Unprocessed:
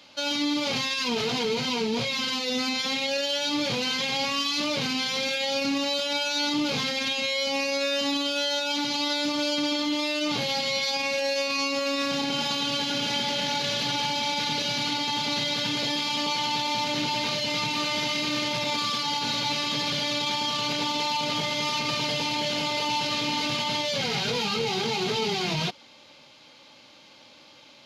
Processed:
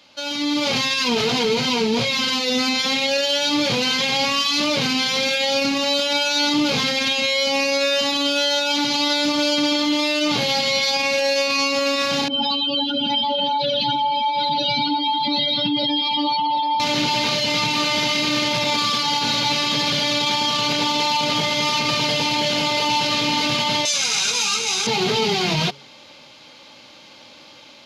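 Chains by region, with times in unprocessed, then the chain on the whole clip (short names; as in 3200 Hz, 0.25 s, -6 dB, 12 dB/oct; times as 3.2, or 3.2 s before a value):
12.28–16.8 spectral contrast raised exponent 2.9 + echo 0.734 s -12 dB
23.85–24.87 HPF 1500 Hz 6 dB/oct + band shelf 7500 Hz +11.5 dB 1 oct + comb 0.8 ms, depth 40%
whole clip: de-hum 140 Hz, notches 3; AGC gain up to 7 dB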